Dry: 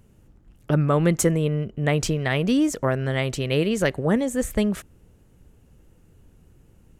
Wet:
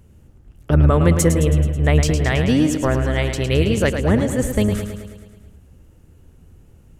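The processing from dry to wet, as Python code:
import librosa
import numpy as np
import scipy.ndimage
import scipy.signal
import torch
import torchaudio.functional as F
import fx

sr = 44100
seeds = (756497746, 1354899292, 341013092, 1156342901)

p1 = fx.octave_divider(x, sr, octaves=1, level_db=-5.0)
p2 = fx.peak_eq(p1, sr, hz=74.0, db=8.5, octaves=0.48)
p3 = p2 + fx.echo_feedback(p2, sr, ms=108, feedback_pct=60, wet_db=-8, dry=0)
y = p3 * librosa.db_to_amplitude(2.5)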